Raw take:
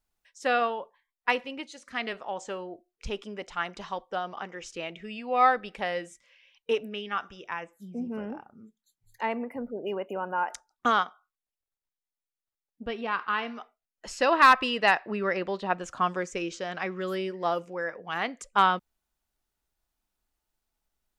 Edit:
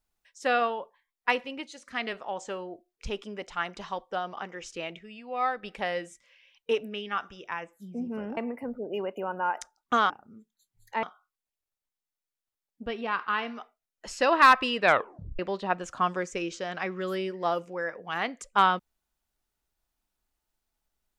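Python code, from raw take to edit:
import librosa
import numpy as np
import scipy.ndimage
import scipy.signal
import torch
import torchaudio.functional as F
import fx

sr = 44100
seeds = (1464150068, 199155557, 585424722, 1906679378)

y = fx.edit(x, sr, fx.clip_gain(start_s=4.99, length_s=0.64, db=-7.0),
    fx.move(start_s=8.37, length_s=0.93, to_s=11.03),
    fx.tape_stop(start_s=14.8, length_s=0.59), tone=tone)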